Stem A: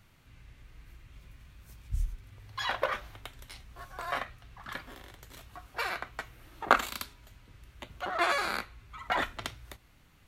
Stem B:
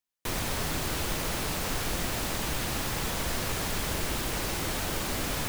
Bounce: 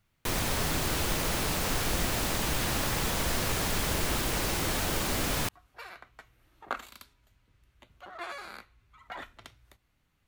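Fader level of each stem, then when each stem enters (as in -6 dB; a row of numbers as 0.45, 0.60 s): -12.0, +1.5 dB; 0.00, 0.00 s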